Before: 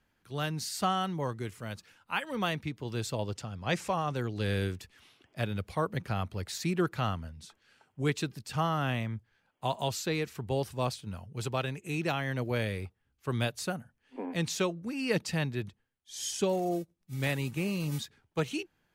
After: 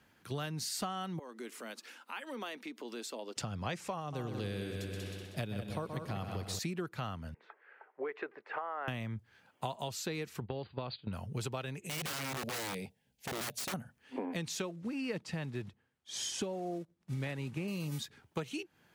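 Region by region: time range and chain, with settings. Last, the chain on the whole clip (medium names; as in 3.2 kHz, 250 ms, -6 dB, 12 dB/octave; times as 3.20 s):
1.19–3.37 s: Chebyshev high-pass 230 Hz, order 5 + compression 2.5:1, threshold -54 dBFS
4.00–6.59 s: peaking EQ 1.5 kHz -5 dB 1.5 oct + multi-head delay 63 ms, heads second and third, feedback 49%, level -8.5 dB
7.34–8.88 s: Chebyshev band-pass 410–2000 Hz, order 3 + compression, threshold -35 dBFS
10.40–11.13 s: gate -41 dBFS, range -12 dB + compression, threshold -31 dBFS + brick-wall FIR low-pass 4.8 kHz
11.86–13.74 s: static phaser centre 330 Hz, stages 6 + integer overflow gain 32 dB + compression 2:1, threshold -46 dBFS
14.62–17.68 s: block-companded coder 5-bit + low-pass 11 kHz + treble shelf 3.9 kHz -9 dB
whole clip: high-pass 88 Hz; compression 10:1, threshold -43 dBFS; trim +8 dB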